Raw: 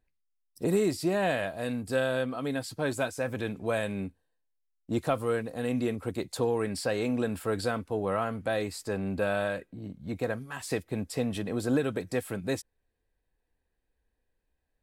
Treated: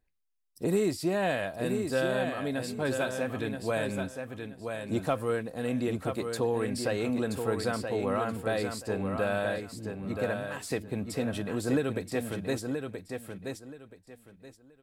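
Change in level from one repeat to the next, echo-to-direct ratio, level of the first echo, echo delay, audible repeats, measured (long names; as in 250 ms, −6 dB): −13.0 dB, −6.0 dB, −6.0 dB, 977 ms, 3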